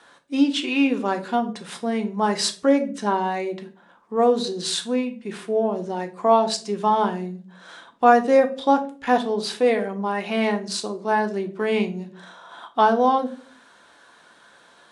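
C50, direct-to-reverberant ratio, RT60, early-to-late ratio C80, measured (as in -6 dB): 14.0 dB, 5.0 dB, 0.45 s, 19.5 dB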